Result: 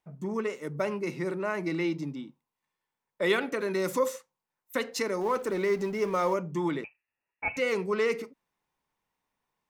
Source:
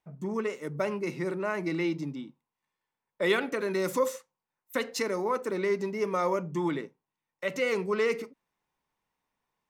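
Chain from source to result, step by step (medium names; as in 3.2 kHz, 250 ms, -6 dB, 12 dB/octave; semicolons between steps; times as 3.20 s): 5.21–6.34 s: companding laws mixed up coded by mu; 6.84–7.57 s: frequency inversion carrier 2.8 kHz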